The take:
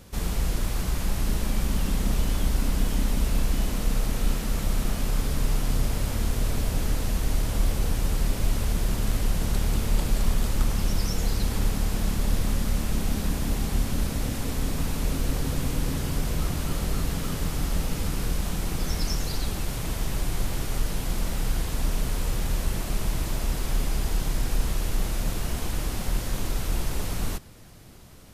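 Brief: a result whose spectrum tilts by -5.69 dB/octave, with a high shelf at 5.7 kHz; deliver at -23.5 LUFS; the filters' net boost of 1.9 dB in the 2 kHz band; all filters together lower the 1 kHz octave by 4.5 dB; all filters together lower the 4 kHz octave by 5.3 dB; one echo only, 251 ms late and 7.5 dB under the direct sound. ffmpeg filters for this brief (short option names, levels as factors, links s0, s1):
-af "equalizer=f=1000:t=o:g=-7.5,equalizer=f=2000:t=o:g=7,equalizer=f=4000:t=o:g=-6,highshelf=f=5700:g=-7.5,aecho=1:1:251:0.422,volume=1.78"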